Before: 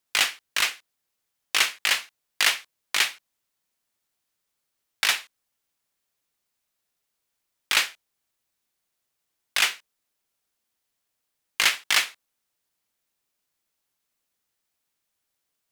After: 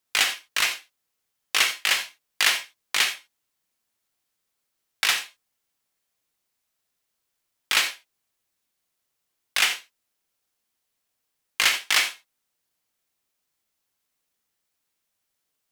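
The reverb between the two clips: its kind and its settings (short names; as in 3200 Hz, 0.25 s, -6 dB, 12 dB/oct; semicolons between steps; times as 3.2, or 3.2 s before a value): non-linear reverb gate 0.11 s flat, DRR 6.5 dB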